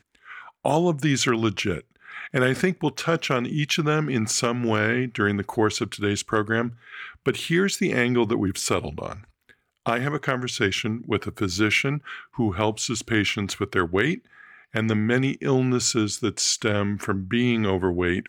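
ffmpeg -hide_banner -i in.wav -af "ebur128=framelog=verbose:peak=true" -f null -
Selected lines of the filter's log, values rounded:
Integrated loudness:
  I:         -23.9 LUFS
  Threshold: -34.3 LUFS
Loudness range:
  LRA:         2.3 LU
  Threshold: -44.4 LUFS
  LRA low:   -25.6 LUFS
  LRA high:  -23.2 LUFS
True peak:
  Peak:       -7.0 dBFS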